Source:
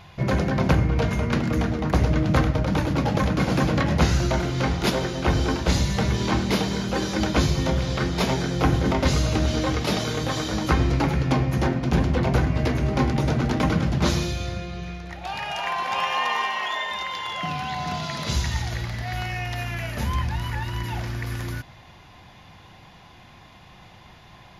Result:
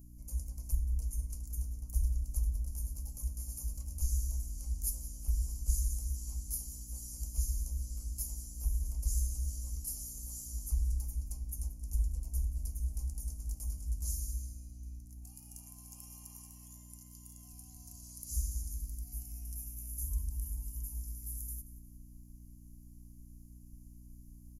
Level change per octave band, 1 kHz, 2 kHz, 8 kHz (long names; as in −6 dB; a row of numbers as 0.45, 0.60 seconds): below −40 dB, below −40 dB, −4.5 dB